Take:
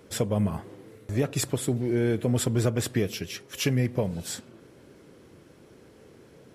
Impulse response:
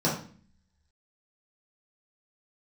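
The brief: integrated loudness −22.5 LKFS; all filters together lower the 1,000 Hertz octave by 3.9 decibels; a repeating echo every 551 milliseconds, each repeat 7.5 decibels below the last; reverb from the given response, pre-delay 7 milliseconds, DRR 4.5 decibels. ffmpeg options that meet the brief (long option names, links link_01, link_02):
-filter_complex "[0:a]equalizer=frequency=1000:width_type=o:gain=-5.5,aecho=1:1:551|1102|1653|2204|2755:0.422|0.177|0.0744|0.0312|0.0131,asplit=2[link_01][link_02];[1:a]atrim=start_sample=2205,adelay=7[link_03];[link_02][link_03]afir=irnorm=-1:irlink=0,volume=-16.5dB[link_04];[link_01][link_04]amix=inputs=2:normalize=0,volume=2dB"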